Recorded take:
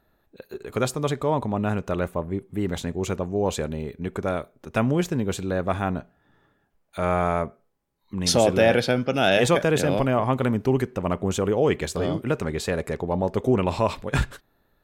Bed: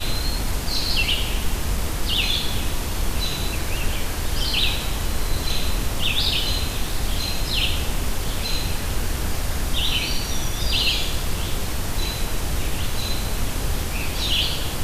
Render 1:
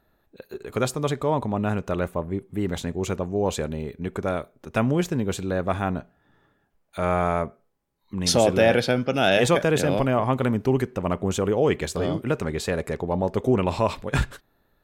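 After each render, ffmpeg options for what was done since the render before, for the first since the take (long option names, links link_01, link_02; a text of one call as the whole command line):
ffmpeg -i in.wav -af anull out.wav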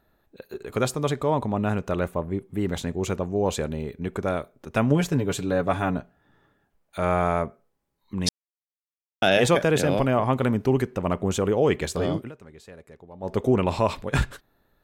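ffmpeg -i in.wav -filter_complex "[0:a]asettb=1/sr,asplit=3[link_01][link_02][link_03];[link_01]atrim=end=4.904[link_04];[link_02]atrim=start=4.9:end=5.97,asetpts=PTS-STARTPTS,afade=type=in:duration=0.004:curve=qsin,afade=type=out:start_time=1.066:duration=0.004:curve=qsin,aecho=1:1:7:0.65,atrim=end_sample=47187[link_05];[link_03]atrim=start=5.966[link_06];[link_04][link_05]acrossfade=duration=0.004:curve1=hsin:curve2=qsin[link_07];[link_07][link_06]acrossfade=duration=0.004:curve1=qsin:curve2=hsin,asplit=5[link_08][link_09][link_10][link_11][link_12];[link_08]atrim=end=8.29,asetpts=PTS-STARTPTS,afade=type=out:start_time=8.286:duration=0.004:curve=hsin[link_13];[link_09]atrim=start=8.29:end=9.22,asetpts=PTS-STARTPTS,volume=0[link_14];[link_10]atrim=start=9.22:end=12.31,asetpts=PTS-STARTPTS,afade=type=in:duration=0.004:curve=hsin,afade=type=out:start_time=2.96:duration=0.13:silence=0.105925[link_15];[link_11]atrim=start=12.31:end=13.2,asetpts=PTS-STARTPTS,volume=-19.5dB[link_16];[link_12]atrim=start=13.2,asetpts=PTS-STARTPTS,afade=type=in:duration=0.13:silence=0.105925[link_17];[link_13][link_14][link_15][link_16][link_17]concat=n=5:v=0:a=1" out.wav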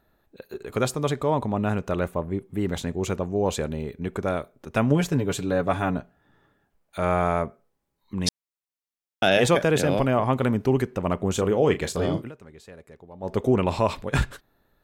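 ffmpeg -i in.wav -filter_complex "[0:a]asettb=1/sr,asplit=3[link_01][link_02][link_03];[link_01]atrim=end=11.324[link_04];[link_02]atrim=start=11.32:end=12.27,asetpts=PTS-STARTPTS,afade=type=in:duration=0.004:curve=qsin,afade=type=out:start_time=0.946:duration=0.004:curve=qsin,asplit=2[link_05][link_06];[link_06]adelay=33,volume=-11dB[link_07];[link_05][link_07]amix=inputs=2:normalize=0,atrim=end_sample=41895[link_08];[link_03]atrim=start=12.266[link_09];[link_04][link_08]acrossfade=duration=0.004:curve1=hsin:curve2=qsin[link_10];[link_10][link_09]acrossfade=duration=0.004:curve1=qsin:curve2=hsin" out.wav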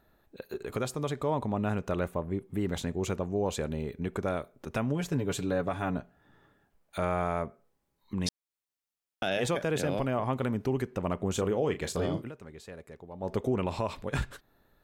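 ffmpeg -i in.wav -af "acompressor=threshold=-35dB:ratio=1.5,alimiter=limit=-19dB:level=0:latency=1:release=280" out.wav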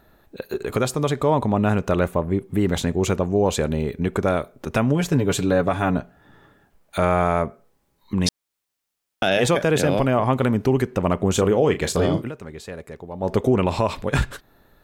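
ffmpeg -i in.wav -af "volume=10.5dB" out.wav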